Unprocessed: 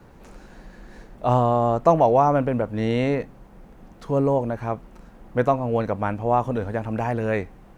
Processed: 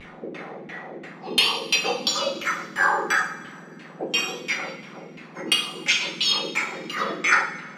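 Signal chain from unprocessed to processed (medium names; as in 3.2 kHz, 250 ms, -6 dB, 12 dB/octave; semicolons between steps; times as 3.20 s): spectrum inverted on a logarithmic axis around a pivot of 1.8 kHz; vibrato 1.4 Hz 75 cents; LFO low-pass saw down 2.9 Hz 230–2700 Hz; sine folder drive 12 dB, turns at -10 dBFS; 5.88–6.33 s: resonant high shelf 2.2 kHz +9.5 dB, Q 1.5; two-slope reverb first 0.54 s, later 2.3 s, from -18 dB, DRR 1 dB; loudness maximiser +4.5 dB; trim -6 dB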